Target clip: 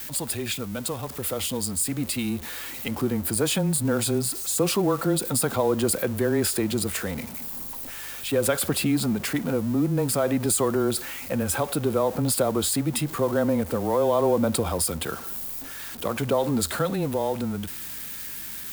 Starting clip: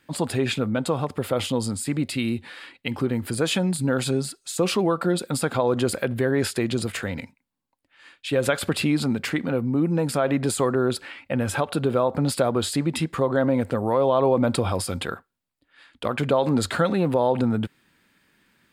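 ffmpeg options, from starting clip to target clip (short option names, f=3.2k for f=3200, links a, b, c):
-filter_complex "[0:a]aeval=exprs='val(0)+0.5*0.0237*sgn(val(0))':c=same,acrossover=split=110|1300[a][b][c];[b]dynaudnorm=f=190:g=21:m=10dB[d];[a][d][c]amix=inputs=3:normalize=0,afreqshift=-14,aeval=exprs='val(0)+0.00501*(sin(2*PI*50*n/s)+sin(2*PI*2*50*n/s)/2+sin(2*PI*3*50*n/s)/3+sin(2*PI*4*50*n/s)/4+sin(2*PI*5*50*n/s)/5)':c=same,aemphasis=mode=production:type=75fm,volume=-8.5dB"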